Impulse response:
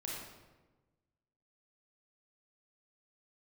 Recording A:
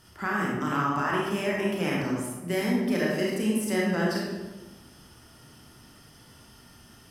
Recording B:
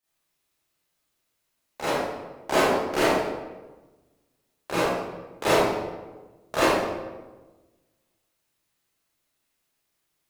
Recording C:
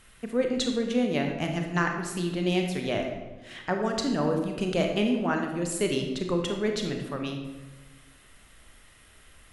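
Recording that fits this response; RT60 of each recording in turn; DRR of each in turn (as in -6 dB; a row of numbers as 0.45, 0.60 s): A; 1.2, 1.2, 1.2 s; -4.5, -13.0, 2.5 dB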